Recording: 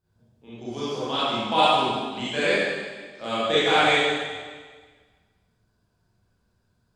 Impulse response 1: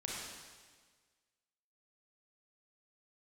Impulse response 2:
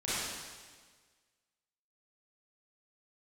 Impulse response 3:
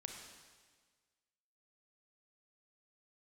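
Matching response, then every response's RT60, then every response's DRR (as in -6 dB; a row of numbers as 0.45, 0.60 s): 2; 1.5, 1.5, 1.5 s; -4.0, -12.0, 2.5 dB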